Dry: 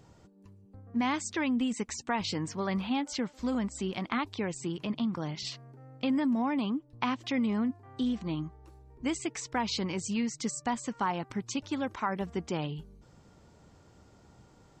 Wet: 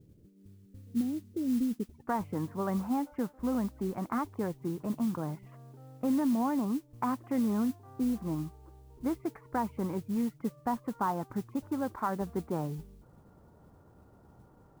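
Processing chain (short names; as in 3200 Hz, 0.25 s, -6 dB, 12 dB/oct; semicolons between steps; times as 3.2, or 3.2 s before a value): inverse Chebyshev low-pass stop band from 1100 Hz, stop band 50 dB, from 1.94 s stop band from 3700 Hz; modulation noise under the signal 23 dB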